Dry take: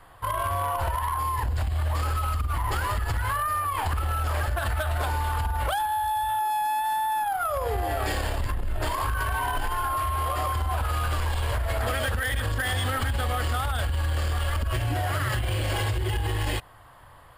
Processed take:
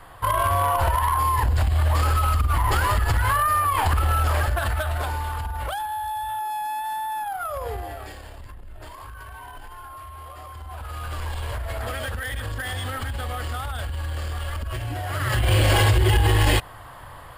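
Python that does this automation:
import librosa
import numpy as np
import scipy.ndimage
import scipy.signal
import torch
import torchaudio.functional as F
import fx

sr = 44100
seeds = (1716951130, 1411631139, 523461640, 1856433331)

y = fx.gain(x, sr, db=fx.line((4.19, 6.0), (5.41, -2.5), (7.7, -2.5), (8.17, -13.0), (10.48, -13.0), (11.25, -3.0), (15.05, -3.0), (15.54, 9.0)))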